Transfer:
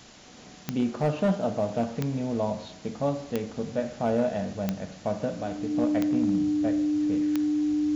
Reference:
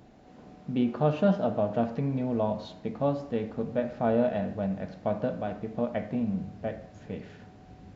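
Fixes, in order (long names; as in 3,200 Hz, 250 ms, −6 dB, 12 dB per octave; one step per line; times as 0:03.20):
clipped peaks rebuilt −17.5 dBFS
click removal
notch filter 300 Hz, Q 30
noise reduction from a noise print 6 dB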